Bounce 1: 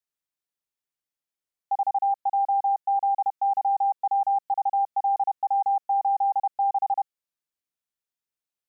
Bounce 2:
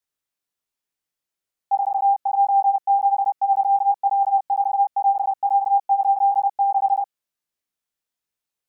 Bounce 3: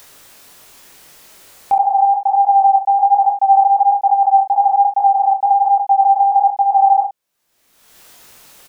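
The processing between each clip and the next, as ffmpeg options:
ffmpeg -i in.wav -af "flanger=delay=18.5:depth=4:speed=1.2,volume=7.5dB" out.wav
ffmpeg -i in.wav -filter_complex "[0:a]equalizer=frequency=680:width=0.64:gain=3,acompressor=mode=upward:threshold=-21dB:ratio=2.5,asplit=2[link_01][link_02];[link_02]aecho=0:1:27|68:0.501|0.282[link_03];[link_01][link_03]amix=inputs=2:normalize=0,volume=4dB" out.wav

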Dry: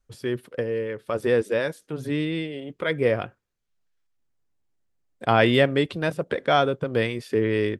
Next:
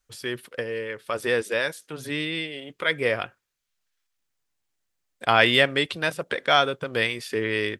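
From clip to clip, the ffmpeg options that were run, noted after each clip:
ffmpeg -i in.wav -af "tiltshelf=frequency=840:gain=-7.5" out.wav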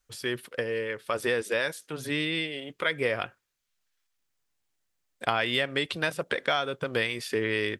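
ffmpeg -i in.wav -af "acompressor=threshold=-22dB:ratio=10" out.wav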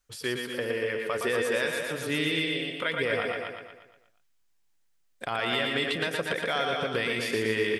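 ffmpeg -i in.wav -filter_complex "[0:a]asplit=2[link_01][link_02];[link_02]aecho=0:1:113.7|247.8:0.316|0.355[link_03];[link_01][link_03]amix=inputs=2:normalize=0,alimiter=limit=-17dB:level=0:latency=1:release=62,asplit=2[link_04][link_05];[link_05]aecho=0:1:118|236|354|472|590|708:0.562|0.287|0.146|0.0746|0.038|0.0194[link_06];[link_04][link_06]amix=inputs=2:normalize=0" out.wav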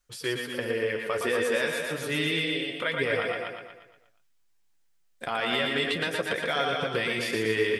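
ffmpeg -i in.wav -af "flanger=delay=5.6:depth=7.4:regen=-39:speed=0.28:shape=sinusoidal,volume=4.5dB" out.wav

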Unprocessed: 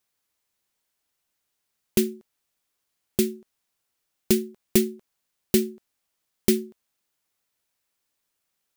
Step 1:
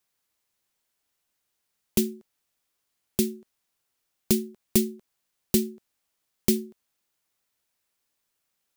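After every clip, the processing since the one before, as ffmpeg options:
ffmpeg -i in.wav -filter_complex "[0:a]acrossover=split=330|3000[link_01][link_02][link_03];[link_02]acompressor=threshold=-37dB:ratio=3[link_04];[link_01][link_04][link_03]amix=inputs=3:normalize=0" out.wav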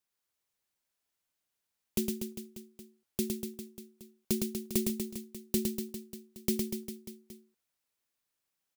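ffmpeg -i in.wav -af "aecho=1:1:110|242|400.4|590.5|818.6:0.631|0.398|0.251|0.158|0.1,volume=-8.5dB" out.wav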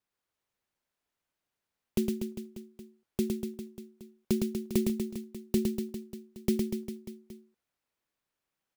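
ffmpeg -i in.wav -af "highshelf=frequency=3500:gain=-11.5,volume=4dB" out.wav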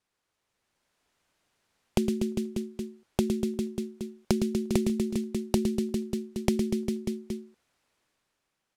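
ffmpeg -i in.wav -af "dynaudnorm=framelen=140:gausssize=11:maxgain=7dB,lowpass=10000,acompressor=threshold=-31dB:ratio=4,volume=6.5dB" out.wav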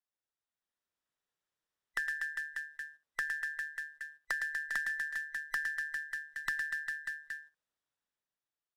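ffmpeg -i in.wav -filter_complex "[0:a]afftfilt=real='real(if(between(b,1,1012),(2*floor((b-1)/92)+1)*92-b,b),0)':imag='imag(if(between(b,1,1012),(2*floor((b-1)/92)+1)*92-b,b),0)*if(between(b,1,1012),-1,1)':win_size=2048:overlap=0.75,agate=range=-10dB:threshold=-45dB:ratio=16:detection=peak,acrossover=split=110|1300[link_01][link_02][link_03];[link_03]asoftclip=type=tanh:threshold=-20.5dB[link_04];[link_01][link_02][link_04]amix=inputs=3:normalize=0,volume=-8dB" out.wav

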